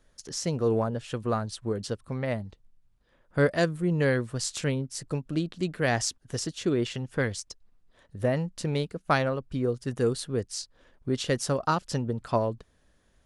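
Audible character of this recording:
background noise floor −66 dBFS
spectral slope −5.0 dB per octave

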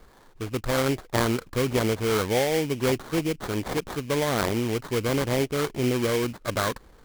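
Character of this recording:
aliases and images of a low sample rate 2,700 Hz, jitter 20%

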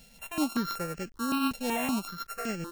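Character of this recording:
a buzz of ramps at a fixed pitch in blocks of 32 samples
tremolo triangle 7.7 Hz, depth 40%
a quantiser's noise floor 10 bits, dither none
notches that jump at a steady rate 5.3 Hz 330–3,700 Hz

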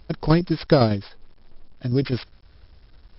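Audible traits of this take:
a buzz of ramps at a fixed pitch in blocks of 8 samples
tremolo saw down 9.9 Hz, depth 50%
a quantiser's noise floor 10 bits, dither none
MP3

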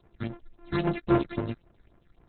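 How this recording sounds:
a buzz of ramps at a fixed pitch in blocks of 128 samples
phaser sweep stages 6, 3.7 Hz, lowest notch 690–4,100 Hz
tremolo saw down 2.3 Hz, depth 35%
Opus

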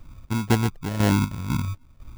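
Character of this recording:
phaser sweep stages 2, 2.9 Hz, lowest notch 480–1,000 Hz
aliases and images of a low sample rate 1,200 Hz, jitter 0%
chopped level 2 Hz, depth 60%, duty 50%

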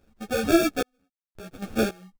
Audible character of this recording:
sample-and-hold tremolo 3.7 Hz, depth 100%
aliases and images of a low sample rate 1,000 Hz, jitter 0%
a shimmering, thickened sound

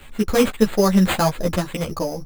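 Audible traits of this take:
aliases and images of a low sample rate 5,600 Hz, jitter 0%
a shimmering, thickened sound

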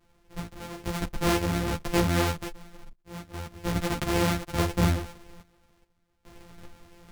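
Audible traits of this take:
a buzz of ramps at a fixed pitch in blocks of 256 samples
sample-and-hold tremolo 2.4 Hz, depth 95%
a shimmering, thickened sound

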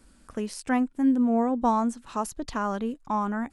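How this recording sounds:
background noise floor −58 dBFS
spectral slope −5.5 dB per octave

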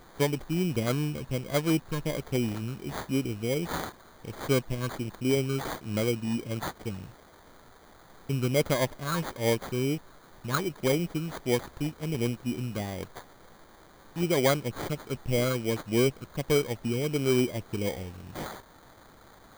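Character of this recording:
a quantiser's noise floor 8 bits, dither triangular
phaser sweep stages 12, 1.4 Hz, lowest notch 720–4,100 Hz
aliases and images of a low sample rate 2,700 Hz, jitter 0%

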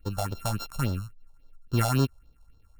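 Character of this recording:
a buzz of ramps at a fixed pitch in blocks of 32 samples
phaser sweep stages 4, 3.6 Hz, lowest notch 300–2,200 Hz

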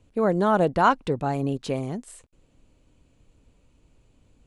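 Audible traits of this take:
background noise floor −63 dBFS
spectral slope −3.5 dB per octave

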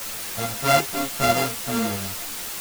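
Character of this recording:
a buzz of ramps at a fixed pitch in blocks of 64 samples
tremolo saw up 5.6 Hz, depth 35%
a quantiser's noise floor 6 bits, dither triangular
a shimmering, thickened sound

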